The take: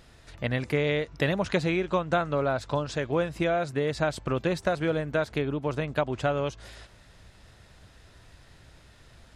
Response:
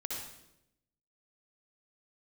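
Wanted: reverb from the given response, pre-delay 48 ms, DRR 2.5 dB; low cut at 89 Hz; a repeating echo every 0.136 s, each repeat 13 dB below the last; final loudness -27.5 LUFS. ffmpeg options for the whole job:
-filter_complex "[0:a]highpass=89,aecho=1:1:136|272|408:0.224|0.0493|0.0108,asplit=2[a][b];[1:a]atrim=start_sample=2205,adelay=48[c];[b][c]afir=irnorm=-1:irlink=0,volume=-4dB[d];[a][d]amix=inputs=2:normalize=0,volume=-1.5dB"

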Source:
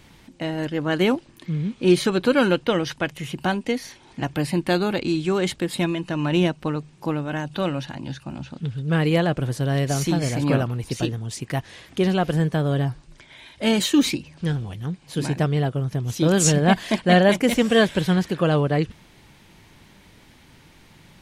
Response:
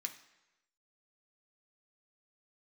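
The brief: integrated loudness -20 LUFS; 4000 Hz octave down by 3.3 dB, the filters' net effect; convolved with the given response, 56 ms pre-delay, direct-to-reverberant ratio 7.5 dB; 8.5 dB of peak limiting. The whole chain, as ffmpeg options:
-filter_complex "[0:a]equalizer=f=4k:t=o:g=-4.5,alimiter=limit=-12.5dB:level=0:latency=1,asplit=2[a][b];[1:a]atrim=start_sample=2205,adelay=56[c];[b][c]afir=irnorm=-1:irlink=0,volume=-5.5dB[d];[a][d]amix=inputs=2:normalize=0,volume=4dB"

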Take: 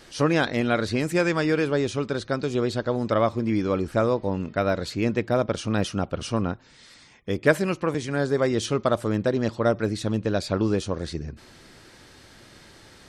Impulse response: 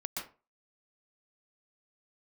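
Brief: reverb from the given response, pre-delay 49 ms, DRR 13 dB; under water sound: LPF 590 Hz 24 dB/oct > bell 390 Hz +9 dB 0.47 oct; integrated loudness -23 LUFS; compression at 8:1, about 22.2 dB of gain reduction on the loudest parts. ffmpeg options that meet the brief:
-filter_complex "[0:a]acompressor=threshold=-36dB:ratio=8,asplit=2[a][b];[1:a]atrim=start_sample=2205,adelay=49[c];[b][c]afir=irnorm=-1:irlink=0,volume=-14.5dB[d];[a][d]amix=inputs=2:normalize=0,lowpass=f=590:w=0.5412,lowpass=f=590:w=1.3066,equalizer=f=390:t=o:w=0.47:g=9,volume=15dB"

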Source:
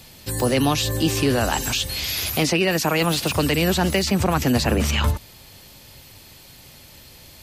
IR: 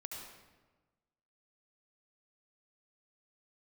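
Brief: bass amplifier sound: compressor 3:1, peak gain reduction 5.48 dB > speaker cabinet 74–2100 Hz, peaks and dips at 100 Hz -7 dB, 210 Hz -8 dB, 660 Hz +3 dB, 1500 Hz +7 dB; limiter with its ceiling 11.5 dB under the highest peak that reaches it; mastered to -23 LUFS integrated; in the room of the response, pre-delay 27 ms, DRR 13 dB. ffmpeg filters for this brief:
-filter_complex "[0:a]alimiter=limit=-19dB:level=0:latency=1,asplit=2[a][b];[1:a]atrim=start_sample=2205,adelay=27[c];[b][c]afir=irnorm=-1:irlink=0,volume=-11dB[d];[a][d]amix=inputs=2:normalize=0,acompressor=threshold=-29dB:ratio=3,highpass=f=74:w=0.5412,highpass=f=74:w=1.3066,equalizer=f=100:t=q:w=4:g=-7,equalizer=f=210:t=q:w=4:g=-8,equalizer=f=660:t=q:w=4:g=3,equalizer=f=1.5k:t=q:w=4:g=7,lowpass=f=2.1k:w=0.5412,lowpass=f=2.1k:w=1.3066,volume=11.5dB"

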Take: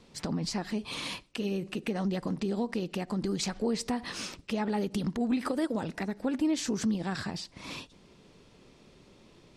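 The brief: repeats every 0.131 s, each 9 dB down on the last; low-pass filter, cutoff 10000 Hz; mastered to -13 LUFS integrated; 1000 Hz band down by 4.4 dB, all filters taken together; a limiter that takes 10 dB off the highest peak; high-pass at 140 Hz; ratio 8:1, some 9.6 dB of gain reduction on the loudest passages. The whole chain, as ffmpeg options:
-af "highpass=140,lowpass=10k,equalizer=f=1k:t=o:g=-6,acompressor=threshold=-35dB:ratio=8,alimiter=level_in=7.5dB:limit=-24dB:level=0:latency=1,volume=-7.5dB,aecho=1:1:131|262|393|524:0.355|0.124|0.0435|0.0152,volume=27.5dB"

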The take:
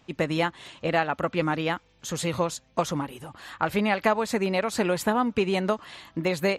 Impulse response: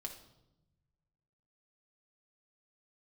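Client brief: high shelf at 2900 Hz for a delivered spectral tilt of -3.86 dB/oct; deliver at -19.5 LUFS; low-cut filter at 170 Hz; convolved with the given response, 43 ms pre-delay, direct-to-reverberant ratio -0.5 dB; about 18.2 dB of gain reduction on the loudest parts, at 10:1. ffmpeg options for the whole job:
-filter_complex "[0:a]highpass=170,highshelf=f=2.9k:g=3.5,acompressor=threshold=-36dB:ratio=10,asplit=2[a][b];[1:a]atrim=start_sample=2205,adelay=43[c];[b][c]afir=irnorm=-1:irlink=0,volume=3.5dB[d];[a][d]amix=inputs=2:normalize=0,volume=17.5dB"

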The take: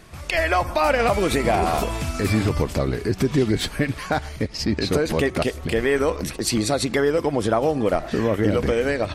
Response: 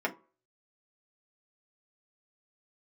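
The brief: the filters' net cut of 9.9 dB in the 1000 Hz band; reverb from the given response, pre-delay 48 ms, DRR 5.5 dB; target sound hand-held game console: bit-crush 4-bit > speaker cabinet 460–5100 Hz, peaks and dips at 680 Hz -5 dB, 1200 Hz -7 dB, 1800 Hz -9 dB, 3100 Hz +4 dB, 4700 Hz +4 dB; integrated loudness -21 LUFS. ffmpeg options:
-filter_complex "[0:a]equalizer=f=1k:t=o:g=-8,asplit=2[a][b];[1:a]atrim=start_sample=2205,adelay=48[c];[b][c]afir=irnorm=-1:irlink=0,volume=-13.5dB[d];[a][d]amix=inputs=2:normalize=0,acrusher=bits=3:mix=0:aa=0.000001,highpass=460,equalizer=f=680:t=q:w=4:g=-5,equalizer=f=1.2k:t=q:w=4:g=-7,equalizer=f=1.8k:t=q:w=4:g=-9,equalizer=f=3.1k:t=q:w=4:g=4,equalizer=f=4.7k:t=q:w=4:g=4,lowpass=f=5.1k:w=0.5412,lowpass=f=5.1k:w=1.3066,volume=4dB"

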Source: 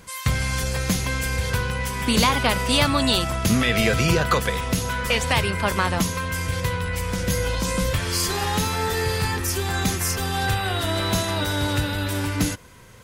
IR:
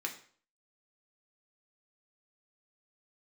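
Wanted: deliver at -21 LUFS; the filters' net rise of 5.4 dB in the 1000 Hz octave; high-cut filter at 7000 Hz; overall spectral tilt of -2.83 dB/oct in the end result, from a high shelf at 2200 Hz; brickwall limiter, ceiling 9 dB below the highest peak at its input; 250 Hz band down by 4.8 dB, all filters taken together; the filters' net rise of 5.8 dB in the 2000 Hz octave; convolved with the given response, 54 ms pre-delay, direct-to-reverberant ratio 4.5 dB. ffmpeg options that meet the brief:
-filter_complex "[0:a]lowpass=7k,equalizer=f=250:t=o:g=-7,equalizer=f=1k:t=o:g=5,equalizer=f=2k:t=o:g=3.5,highshelf=f=2.2k:g=4.5,alimiter=limit=-11dB:level=0:latency=1,asplit=2[a][b];[1:a]atrim=start_sample=2205,adelay=54[c];[b][c]afir=irnorm=-1:irlink=0,volume=-6.5dB[d];[a][d]amix=inputs=2:normalize=0,volume=-0.5dB"

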